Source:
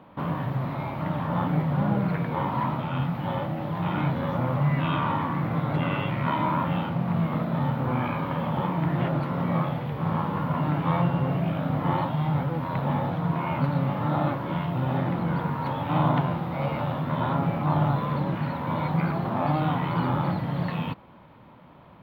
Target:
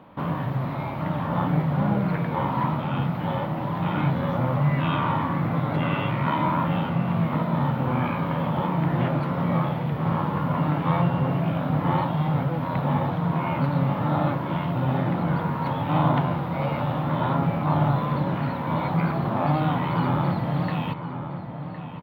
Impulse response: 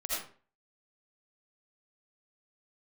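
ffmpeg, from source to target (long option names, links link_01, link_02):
-filter_complex "[0:a]asplit=2[link_01][link_02];[link_02]adelay=1061,lowpass=frequency=2400:poles=1,volume=-9.5dB,asplit=2[link_03][link_04];[link_04]adelay=1061,lowpass=frequency=2400:poles=1,volume=0.41,asplit=2[link_05][link_06];[link_06]adelay=1061,lowpass=frequency=2400:poles=1,volume=0.41,asplit=2[link_07][link_08];[link_08]adelay=1061,lowpass=frequency=2400:poles=1,volume=0.41[link_09];[link_01][link_03][link_05][link_07][link_09]amix=inputs=5:normalize=0,volume=1.5dB"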